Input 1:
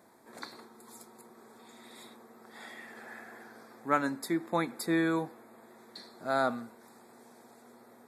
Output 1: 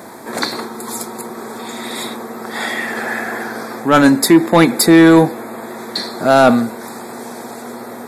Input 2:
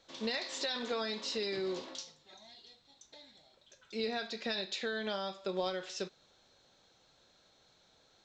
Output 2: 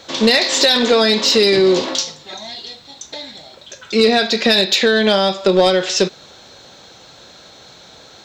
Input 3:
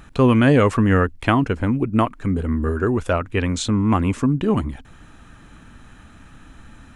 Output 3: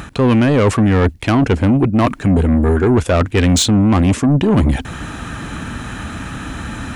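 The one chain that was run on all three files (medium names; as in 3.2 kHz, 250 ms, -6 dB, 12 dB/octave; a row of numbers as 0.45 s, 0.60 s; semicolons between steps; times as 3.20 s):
reverse; compression 16:1, threshold -25 dBFS; reverse; high-pass 57 Hz 12 dB/octave; dynamic bell 1.2 kHz, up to -5 dB, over -49 dBFS, Q 1.4; saturation -28 dBFS; normalise loudness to -14 LUFS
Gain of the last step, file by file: +26.0 dB, +24.5 dB, +20.0 dB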